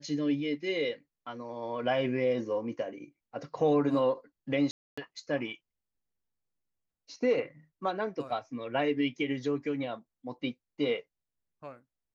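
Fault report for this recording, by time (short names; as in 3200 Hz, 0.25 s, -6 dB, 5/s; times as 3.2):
4.71–4.97 gap 0.265 s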